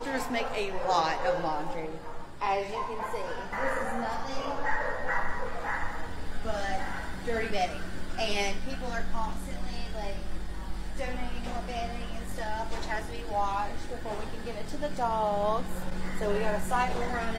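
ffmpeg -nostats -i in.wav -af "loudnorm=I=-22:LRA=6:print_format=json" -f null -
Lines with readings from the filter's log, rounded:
"input_i" : "-32.4",
"input_tp" : "-12.4",
"input_lra" : "4.2",
"input_thresh" : "-42.5",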